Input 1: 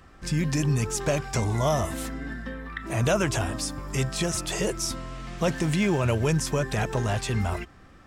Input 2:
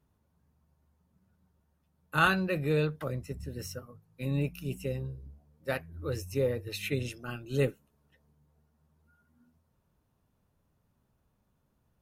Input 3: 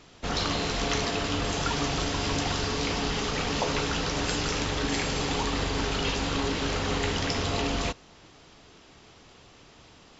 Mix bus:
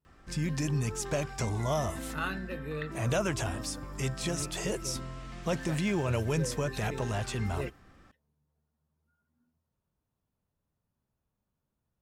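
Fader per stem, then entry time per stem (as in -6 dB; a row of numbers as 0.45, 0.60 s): -6.0 dB, -10.0 dB, off; 0.05 s, 0.00 s, off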